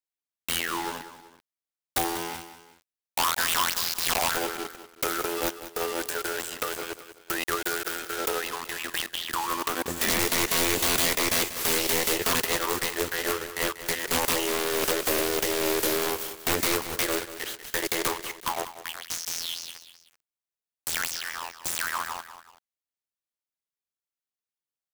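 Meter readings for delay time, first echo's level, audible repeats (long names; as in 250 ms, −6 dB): 190 ms, −13.0 dB, 2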